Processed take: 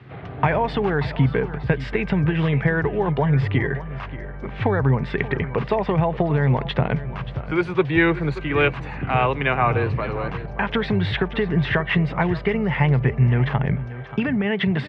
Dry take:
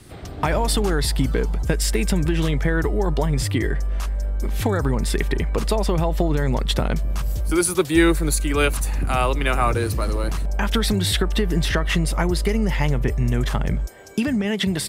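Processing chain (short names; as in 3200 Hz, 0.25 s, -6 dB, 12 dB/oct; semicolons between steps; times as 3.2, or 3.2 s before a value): speaker cabinet 130–2600 Hz, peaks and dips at 130 Hz +8 dB, 220 Hz -5 dB, 320 Hz -8 dB, 570 Hz -4 dB; echo 0.581 s -15 dB; dynamic EQ 1300 Hz, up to -7 dB, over -44 dBFS, Q 5.9; gain +4 dB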